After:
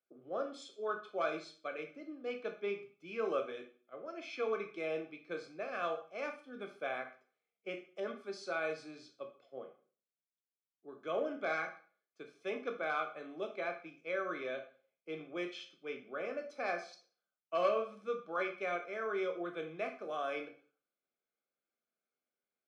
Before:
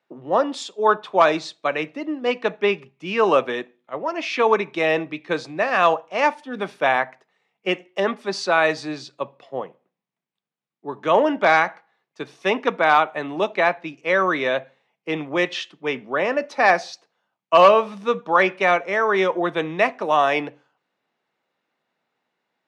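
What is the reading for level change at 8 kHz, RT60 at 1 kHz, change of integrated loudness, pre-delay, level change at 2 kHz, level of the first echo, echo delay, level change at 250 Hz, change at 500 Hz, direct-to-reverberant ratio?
under -15 dB, 0.40 s, -18.5 dB, 9 ms, -19.5 dB, none, none, -18.5 dB, -17.0 dB, 4.5 dB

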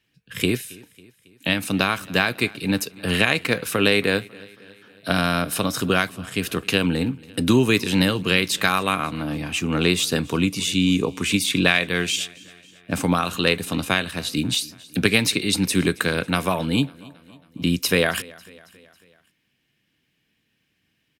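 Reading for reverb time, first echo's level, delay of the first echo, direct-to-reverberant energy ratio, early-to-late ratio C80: none, -23.0 dB, 0.274 s, none, none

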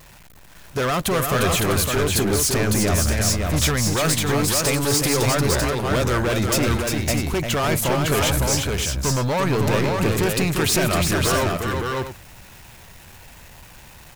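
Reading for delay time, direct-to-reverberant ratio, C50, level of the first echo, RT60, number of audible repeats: 0.35 s, none, none, -5.0 dB, none, 3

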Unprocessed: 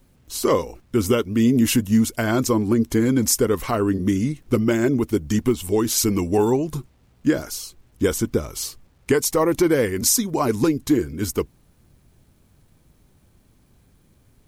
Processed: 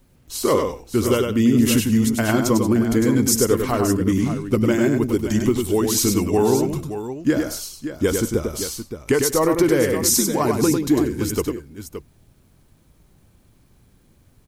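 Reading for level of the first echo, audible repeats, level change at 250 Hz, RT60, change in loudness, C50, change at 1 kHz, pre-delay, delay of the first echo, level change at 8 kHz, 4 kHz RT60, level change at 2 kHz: -5.0 dB, 3, +1.5 dB, none, +1.5 dB, none, +1.5 dB, none, 0.1 s, +1.5 dB, none, +1.5 dB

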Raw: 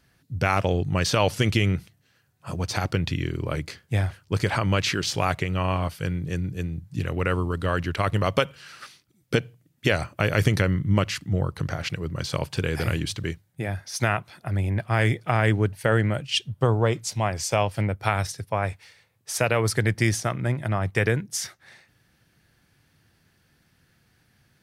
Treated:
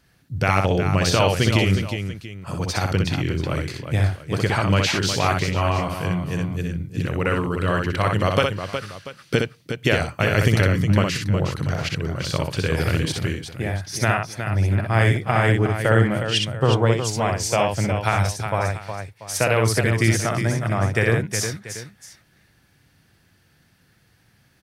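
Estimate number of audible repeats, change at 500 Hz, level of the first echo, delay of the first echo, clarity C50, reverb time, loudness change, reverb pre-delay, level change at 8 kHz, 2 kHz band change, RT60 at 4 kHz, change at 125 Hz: 3, +4.0 dB, -4.0 dB, 62 ms, none, none, +4.0 dB, none, +4.0 dB, +4.0 dB, none, +4.0 dB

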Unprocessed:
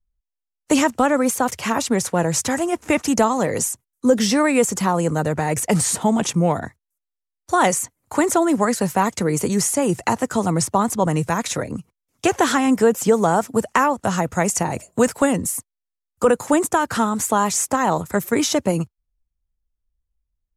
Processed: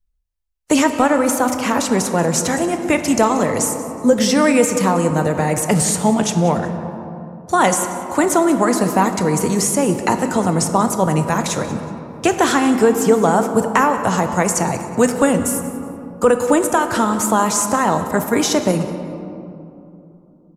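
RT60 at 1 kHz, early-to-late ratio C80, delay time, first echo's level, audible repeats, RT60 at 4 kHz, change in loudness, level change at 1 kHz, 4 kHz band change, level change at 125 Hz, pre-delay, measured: 2.6 s, 8.0 dB, 0.185 s, -17.0 dB, 1, 1.3 s, +3.0 dB, +3.0 dB, +2.5 dB, +3.0 dB, 16 ms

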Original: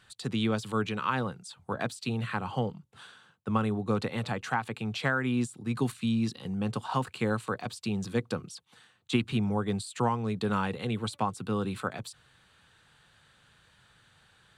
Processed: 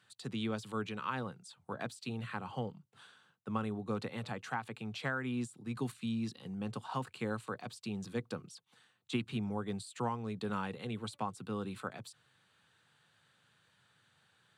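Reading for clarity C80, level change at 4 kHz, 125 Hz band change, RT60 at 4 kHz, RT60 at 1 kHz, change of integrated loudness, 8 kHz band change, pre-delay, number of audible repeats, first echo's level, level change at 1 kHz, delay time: none, -8.0 dB, -9.0 dB, none, none, -8.0 dB, -8.0 dB, none, none, none, -8.0 dB, none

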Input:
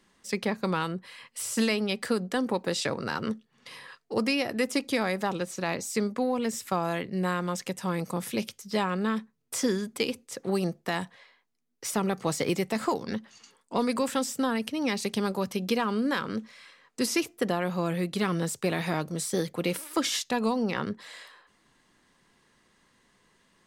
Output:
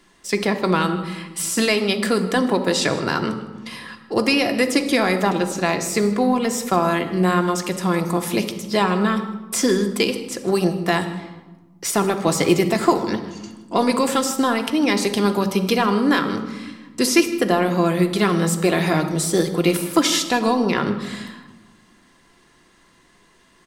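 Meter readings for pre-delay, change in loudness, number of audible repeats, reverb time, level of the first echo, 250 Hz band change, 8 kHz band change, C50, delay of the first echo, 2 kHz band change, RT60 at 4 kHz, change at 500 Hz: 3 ms, +9.5 dB, 1, 1.2 s, -19.0 dB, +9.5 dB, +9.5 dB, 10.0 dB, 0.157 s, +9.5 dB, 0.75 s, +9.5 dB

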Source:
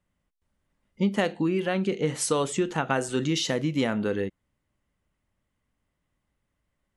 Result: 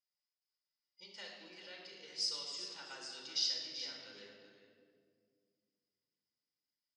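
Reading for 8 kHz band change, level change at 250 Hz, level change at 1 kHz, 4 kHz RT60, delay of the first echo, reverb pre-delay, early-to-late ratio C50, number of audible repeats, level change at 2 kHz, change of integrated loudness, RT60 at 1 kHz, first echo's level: -13.0 dB, -35.0 dB, -25.5 dB, 1.4 s, 0.386 s, 3 ms, 1.0 dB, 1, -19.0 dB, -13.0 dB, 1.8 s, -10.5 dB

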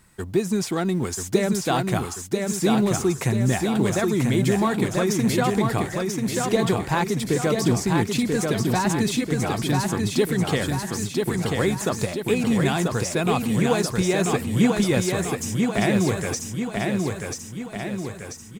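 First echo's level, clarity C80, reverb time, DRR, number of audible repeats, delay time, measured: -3.5 dB, none, none, none, 6, 0.988 s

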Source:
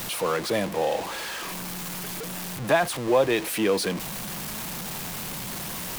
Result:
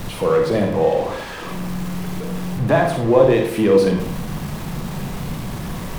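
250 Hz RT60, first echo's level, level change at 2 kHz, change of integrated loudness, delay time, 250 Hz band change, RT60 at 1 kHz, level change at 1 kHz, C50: 0.65 s, none, +1.5 dB, +7.5 dB, none, +10.0 dB, 0.60 s, +5.0 dB, 5.0 dB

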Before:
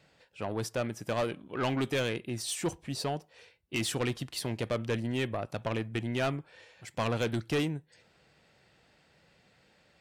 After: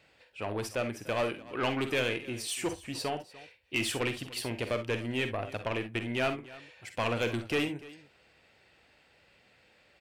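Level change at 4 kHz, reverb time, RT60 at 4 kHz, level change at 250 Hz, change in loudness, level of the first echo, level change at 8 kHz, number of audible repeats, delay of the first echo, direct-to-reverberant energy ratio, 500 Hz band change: +1.5 dB, none, none, -1.5 dB, +0.5 dB, -11.5 dB, -1.0 dB, 2, 47 ms, none, +0.5 dB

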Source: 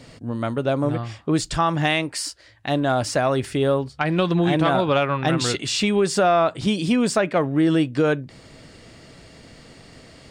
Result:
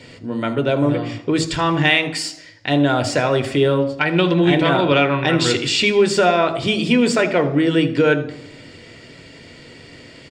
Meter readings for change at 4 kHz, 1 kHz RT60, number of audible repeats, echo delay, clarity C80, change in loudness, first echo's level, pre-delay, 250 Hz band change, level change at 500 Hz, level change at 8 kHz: +6.0 dB, 0.85 s, 1, 79 ms, 16.0 dB, +4.0 dB, -17.5 dB, 3 ms, +3.5 dB, +4.0 dB, +1.0 dB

